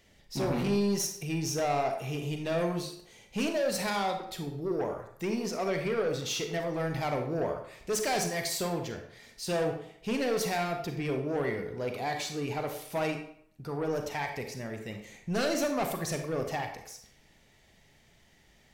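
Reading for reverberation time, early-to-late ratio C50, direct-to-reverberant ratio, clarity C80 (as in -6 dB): 0.65 s, 6.5 dB, 5.0 dB, 9.5 dB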